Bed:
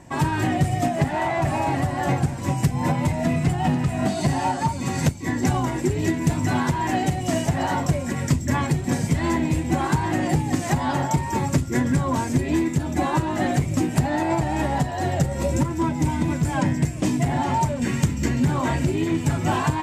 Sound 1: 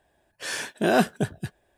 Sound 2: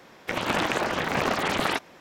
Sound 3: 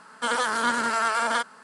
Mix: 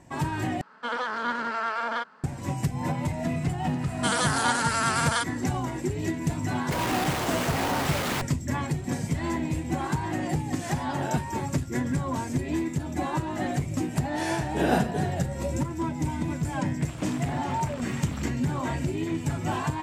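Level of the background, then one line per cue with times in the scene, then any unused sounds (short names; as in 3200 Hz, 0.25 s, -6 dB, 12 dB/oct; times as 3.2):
bed -6.5 dB
0.61 replace with 3 -3.5 dB + air absorption 190 m
3.81 add 3 -3.5 dB + high shelf 3200 Hz +9.5 dB
6.43 add 2 -2 dB + Schmitt trigger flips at -35 dBFS
10.17 add 1 -14 dB
13.73 add 1 -14.5 dB + shoebox room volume 44 m³, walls mixed, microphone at 2 m
16.52 add 2 -17.5 dB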